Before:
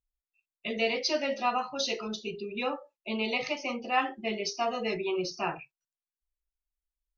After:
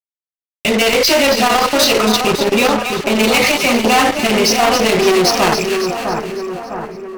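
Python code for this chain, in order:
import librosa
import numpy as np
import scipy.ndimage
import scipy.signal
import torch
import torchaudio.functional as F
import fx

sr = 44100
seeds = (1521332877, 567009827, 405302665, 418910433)

y = fx.level_steps(x, sr, step_db=10)
y = fx.fuzz(y, sr, gain_db=45.0, gate_db=-49.0)
y = fx.echo_split(y, sr, split_hz=1600.0, low_ms=656, high_ms=277, feedback_pct=52, wet_db=-6.5)
y = fx.transformer_sat(y, sr, knee_hz=470.0)
y = y * librosa.db_to_amplitude(4.0)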